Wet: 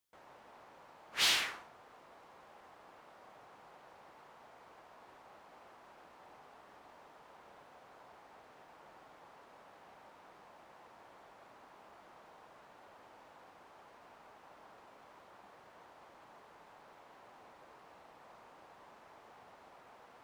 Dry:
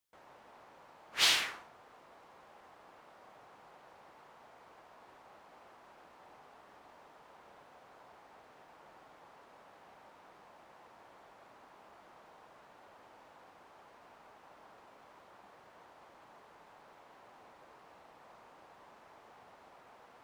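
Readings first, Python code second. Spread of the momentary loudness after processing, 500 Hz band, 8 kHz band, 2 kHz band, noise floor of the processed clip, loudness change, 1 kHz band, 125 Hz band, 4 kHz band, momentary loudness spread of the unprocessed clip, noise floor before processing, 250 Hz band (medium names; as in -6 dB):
17 LU, -0.5 dB, -2.0 dB, -1.5 dB, -60 dBFS, -2.0 dB, -1.0 dB, -0.5 dB, -2.0 dB, 15 LU, -60 dBFS, -0.5 dB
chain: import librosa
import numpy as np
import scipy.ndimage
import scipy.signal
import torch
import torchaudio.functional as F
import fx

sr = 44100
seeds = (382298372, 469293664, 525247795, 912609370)

y = 10.0 ** (-22.0 / 20.0) * np.tanh(x / 10.0 ** (-22.0 / 20.0))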